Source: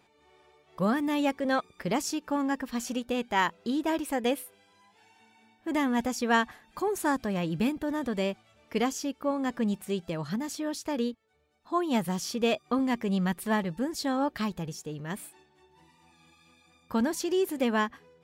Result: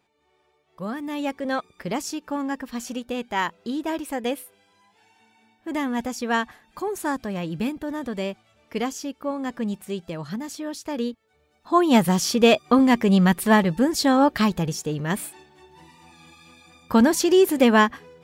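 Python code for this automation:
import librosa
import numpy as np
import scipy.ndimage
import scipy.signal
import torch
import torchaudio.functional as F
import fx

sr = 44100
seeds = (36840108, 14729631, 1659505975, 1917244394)

y = fx.gain(x, sr, db=fx.line((0.8, -5.5), (1.38, 1.0), (10.83, 1.0), (11.86, 10.5)))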